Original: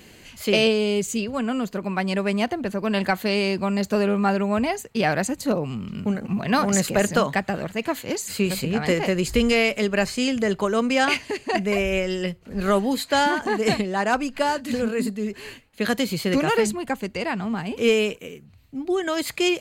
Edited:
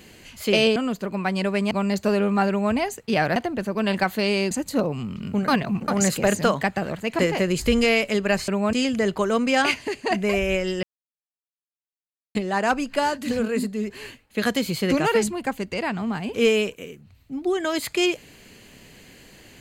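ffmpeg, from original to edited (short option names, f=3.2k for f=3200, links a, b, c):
-filter_complex "[0:a]asplit=12[a][b][c][d][e][f][g][h][i][j][k][l];[a]atrim=end=0.762[m];[b]atrim=start=1.478:end=2.432[n];[c]atrim=start=3.578:end=5.232[o];[d]atrim=start=2.428:end=3.582[p];[e]atrim=start=5.228:end=6.202[q];[f]atrim=start=6.198:end=6.602,asetpts=PTS-STARTPTS,areverse[r];[g]atrim=start=6.598:end=7.912[s];[h]atrim=start=8.868:end=10.162[t];[i]atrim=start=4.358:end=4.612[u];[j]atrim=start=10.158:end=12.26,asetpts=PTS-STARTPTS,afade=t=out:st=2.098:d=0.004:c=hsin[v];[k]atrim=start=12.26:end=13.78,asetpts=PTS-STARTPTS,volume=0[w];[l]atrim=start=13.78,asetpts=PTS-STARTPTS,afade=t=in:d=0.004:c=hsin[x];[m][n]acrossfade=d=0.004:c1=hsin:c2=hsin[y];[y][o]acrossfade=d=0.004:c1=hsin:c2=hsin[z];[z][p]acrossfade=d=0.004:c1=hsin:c2=hsin[aa];[aa][q]acrossfade=d=0.004:c1=hsin:c2=hsin[ab];[ab][r]acrossfade=d=0.004:c1=hsin:c2=hsin[ac];[ac][s]acrossfade=d=0.004:c1=hsin:c2=hsin[ad];[ad][t]acrossfade=d=0.004:c1=hsin:c2=hsin[ae];[ae][u]acrossfade=d=0.004:c1=hsin:c2=hsin[af];[v][w][x]concat=n=3:v=0:a=1[ag];[af][ag]acrossfade=d=0.004:c1=hsin:c2=hsin"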